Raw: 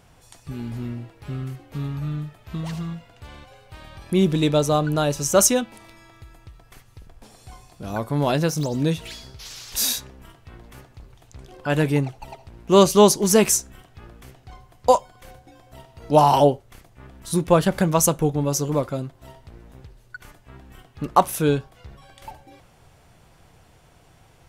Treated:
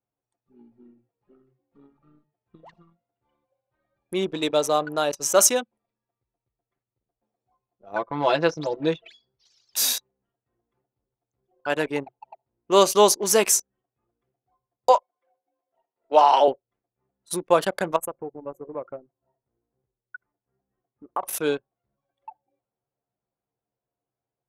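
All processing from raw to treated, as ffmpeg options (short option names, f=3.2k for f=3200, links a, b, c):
-filter_complex "[0:a]asettb=1/sr,asplit=3[a][b][c];[a]atrim=end=7.954[d];[b]atrim=start=7.95:end=9.08,asetpts=PTS-STARTPTS,afade=t=in:d=0.004:c=qsin,afade=t=out:st=1.126:d=0.004:c=qsin,lowpass=4.3k,aecho=1:1:6:0.98,atrim=end_sample=49833[e];[c]atrim=start=9.076[f];[d][e]acrossfade=d=0.004:c1=hsin:c2=qsin[g];[g][f]acrossfade=d=0.004:c1=qsin:c2=hsin,asettb=1/sr,asplit=3[h][i][j];[h]atrim=end=14.894[k];[i]atrim=start=14.89:end=16.48,asetpts=PTS-STARTPTS,afade=t=in:d=0.004:c=qsin,afade=t=out:st=1.586:d=0.004:c=qsin,highpass=370,lowpass=3.2k,highshelf=f=2.2k:g=5.5[l];[j]atrim=start=16.476[m];[k][l]acrossfade=d=0.004:c1=hsin:c2=qsin[n];[n][m]acrossfade=d=0.004:c1=qsin:c2=hsin,asettb=1/sr,asplit=3[o][p][q];[o]atrim=end=17.964[r];[p]atrim=start=17.96:end=21.23,asetpts=PTS-STARTPTS,afade=t=in:d=0.004:c=qsin,afade=t=out:st=3.266:d=0.004:c=qsin,highshelf=f=5.3k:g=-6.5,acompressor=threshold=-25dB:ratio=3:attack=3.2:release=140:knee=1:detection=peak,asuperstop=centerf=4800:order=4:qfactor=0.76[s];[q]atrim=start=21.226[t];[r][s]acrossfade=d=0.004:c1=hsin:c2=qsin[u];[u][t]acrossfade=d=0.004:c1=qsin:c2=hsin,highpass=420,anlmdn=25.1"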